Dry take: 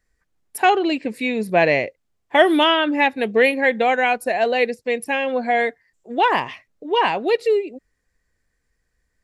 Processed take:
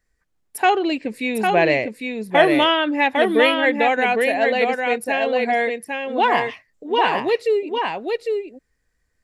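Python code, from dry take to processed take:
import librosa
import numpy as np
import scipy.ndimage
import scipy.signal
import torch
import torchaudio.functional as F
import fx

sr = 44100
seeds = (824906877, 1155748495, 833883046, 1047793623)

y = x + 10.0 ** (-4.0 / 20.0) * np.pad(x, (int(803 * sr / 1000.0), 0))[:len(x)]
y = y * librosa.db_to_amplitude(-1.0)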